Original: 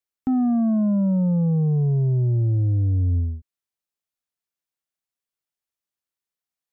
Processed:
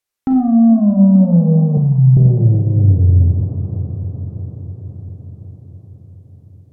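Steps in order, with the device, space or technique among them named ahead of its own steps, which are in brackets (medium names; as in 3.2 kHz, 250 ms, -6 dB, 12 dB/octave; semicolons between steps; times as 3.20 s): multi-head tape echo (multi-head delay 211 ms, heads all three, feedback 68%, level -17 dB; wow and flutter); 1.77–2.17 s: elliptic band-stop 160–810 Hz; low-pass that closes with the level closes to 700 Hz, closed at -17.5 dBFS; peaking EQ 250 Hz -3.5 dB 0.77 oct; Schroeder reverb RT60 0.59 s, combs from 31 ms, DRR 3 dB; trim +8 dB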